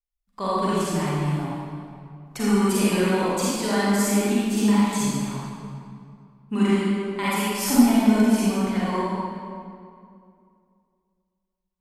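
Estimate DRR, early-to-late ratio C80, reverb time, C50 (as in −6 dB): −10.0 dB, −3.0 dB, 2.4 s, −6.5 dB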